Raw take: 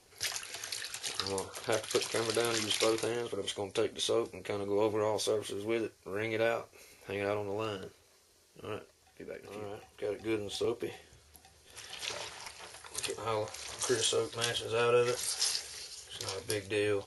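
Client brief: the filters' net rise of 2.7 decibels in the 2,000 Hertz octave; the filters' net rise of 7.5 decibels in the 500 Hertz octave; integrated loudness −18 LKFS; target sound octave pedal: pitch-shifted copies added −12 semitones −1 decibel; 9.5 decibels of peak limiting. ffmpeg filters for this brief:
ffmpeg -i in.wav -filter_complex "[0:a]equalizer=frequency=500:width_type=o:gain=8.5,equalizer=frequency=2000:width_type=o:gain=3,alimiter=limit=-20dB:level=0:latency=1,asplit=2[link_01][link_02];[link_02]asetrate=22050,aresample=44100,atempo=2,volume=-1dB[link_03];[link_01][link_03]amix=inputs=2:normalize=0,volume=11dB" out.wav

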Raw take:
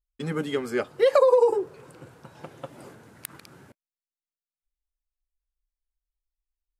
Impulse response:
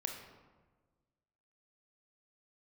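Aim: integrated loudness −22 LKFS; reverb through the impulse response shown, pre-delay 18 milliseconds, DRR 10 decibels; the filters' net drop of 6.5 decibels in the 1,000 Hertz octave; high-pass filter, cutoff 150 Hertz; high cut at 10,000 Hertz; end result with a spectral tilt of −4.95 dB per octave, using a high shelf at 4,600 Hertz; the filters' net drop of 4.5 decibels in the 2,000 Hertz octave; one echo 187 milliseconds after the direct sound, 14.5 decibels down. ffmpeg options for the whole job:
-filter_complex "[0:a]highpass=150,lowpass=10000,equalizer=frequency=1000:width_type=o:gain=-6.5,equalizer=frequency=2000:width_type=o:gain=-4.5,highshelf=frequency=4600:gain=6.5,aecho=1:1:187:0.188,asplit=2[link_01][link_02];[1:a]atrim=start_sample=2205,adelay=18[link_03];[link_02][link_03]afir=irnorm=-1:irlink=0,volume=-10dB[link_04];[link_01][link_04]amix=inputs=2:normalize=0,volume=2.5dB"

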